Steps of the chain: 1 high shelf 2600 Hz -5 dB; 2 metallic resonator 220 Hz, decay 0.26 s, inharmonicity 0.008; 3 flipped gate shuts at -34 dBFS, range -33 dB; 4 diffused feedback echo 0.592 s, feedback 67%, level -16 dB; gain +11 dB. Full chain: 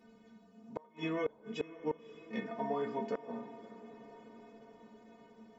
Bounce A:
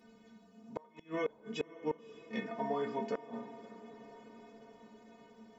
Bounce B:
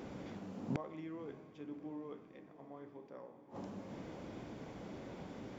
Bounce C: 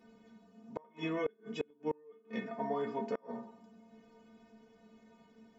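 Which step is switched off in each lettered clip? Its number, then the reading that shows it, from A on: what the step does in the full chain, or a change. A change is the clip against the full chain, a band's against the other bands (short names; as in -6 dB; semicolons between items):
1, 125 Hz band -2.5 dB; 2, 125 Hz band +12.0 dB; 4, echo-to-direct -13.5 dB to none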